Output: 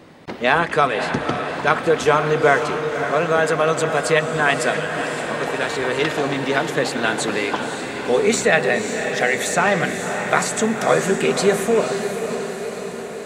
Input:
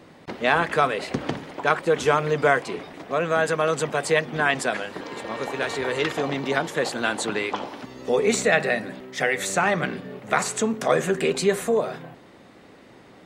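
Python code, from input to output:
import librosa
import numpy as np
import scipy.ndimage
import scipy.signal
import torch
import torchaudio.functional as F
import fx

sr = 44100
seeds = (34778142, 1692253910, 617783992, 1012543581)

y = fx.lowpass(x, sr, hz=11000.0, slope=24, at=(0.59, 1.55))
y = fx.echo_diffused(y, sr, ms=544, feedback_pct=64, wet_db=-7.5)
y = F.gain(torch.from_numpy(y), 3.5).numpy()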